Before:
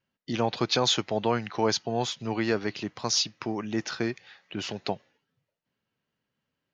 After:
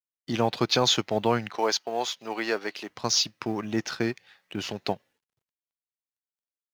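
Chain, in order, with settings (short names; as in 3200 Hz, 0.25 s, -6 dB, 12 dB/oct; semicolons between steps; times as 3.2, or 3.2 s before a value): G.711 law mismatch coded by A; 1.56–2.9 HPF 430 Hz 12 dB/oct; gain +2.5 dB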